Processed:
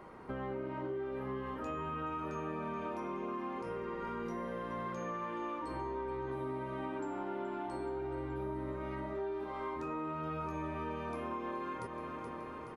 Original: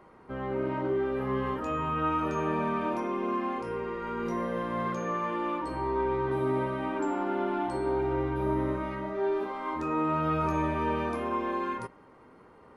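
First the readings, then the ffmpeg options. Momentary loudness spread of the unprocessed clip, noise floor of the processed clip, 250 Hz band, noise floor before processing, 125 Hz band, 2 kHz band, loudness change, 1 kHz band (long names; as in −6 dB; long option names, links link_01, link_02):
5 LU, −44 dBFS, −9.5 dB, −55 dBFS, −9.0 dB, −8.5 dB, −9.5 dB, −9.0 dB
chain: -af "aecho=1:1:425|850|1275|1700|2125|2550:0.2|0.12|0.0718|0.0431|0.0259|0.0155,acompressor=threshold=-41dB:ratio=5,volume=3dB"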